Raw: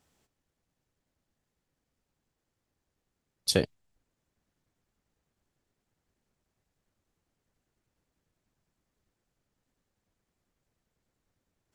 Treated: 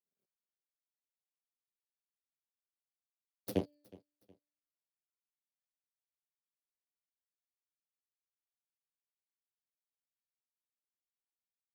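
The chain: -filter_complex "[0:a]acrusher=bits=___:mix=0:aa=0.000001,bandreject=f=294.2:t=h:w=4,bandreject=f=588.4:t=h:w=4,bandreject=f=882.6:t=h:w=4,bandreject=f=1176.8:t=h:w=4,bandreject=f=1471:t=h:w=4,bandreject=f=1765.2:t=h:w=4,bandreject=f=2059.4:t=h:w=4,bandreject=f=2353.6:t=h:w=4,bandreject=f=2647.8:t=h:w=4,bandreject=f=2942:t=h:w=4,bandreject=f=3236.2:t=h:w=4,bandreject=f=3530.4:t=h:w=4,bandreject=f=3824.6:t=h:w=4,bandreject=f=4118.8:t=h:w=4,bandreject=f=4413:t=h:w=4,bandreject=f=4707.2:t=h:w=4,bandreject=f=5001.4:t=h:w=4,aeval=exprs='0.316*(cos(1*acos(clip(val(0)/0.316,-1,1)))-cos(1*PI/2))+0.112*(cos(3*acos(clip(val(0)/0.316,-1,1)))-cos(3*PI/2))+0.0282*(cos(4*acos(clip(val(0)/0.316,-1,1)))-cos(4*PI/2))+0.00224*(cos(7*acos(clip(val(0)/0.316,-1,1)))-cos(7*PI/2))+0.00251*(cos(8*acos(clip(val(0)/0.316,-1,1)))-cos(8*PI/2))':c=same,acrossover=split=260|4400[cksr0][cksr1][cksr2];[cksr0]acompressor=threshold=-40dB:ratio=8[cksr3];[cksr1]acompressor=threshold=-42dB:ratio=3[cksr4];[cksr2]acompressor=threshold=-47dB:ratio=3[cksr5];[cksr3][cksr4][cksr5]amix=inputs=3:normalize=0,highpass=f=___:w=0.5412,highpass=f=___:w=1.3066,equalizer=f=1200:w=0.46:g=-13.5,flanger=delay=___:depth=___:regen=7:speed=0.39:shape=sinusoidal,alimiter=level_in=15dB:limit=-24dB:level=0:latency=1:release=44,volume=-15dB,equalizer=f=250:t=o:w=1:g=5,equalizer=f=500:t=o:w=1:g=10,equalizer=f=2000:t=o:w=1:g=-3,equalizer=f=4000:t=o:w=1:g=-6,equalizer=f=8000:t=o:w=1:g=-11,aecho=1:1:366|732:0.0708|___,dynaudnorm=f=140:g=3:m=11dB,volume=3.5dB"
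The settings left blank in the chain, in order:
10, 100, 100, 4.8, 5.9, 0.0255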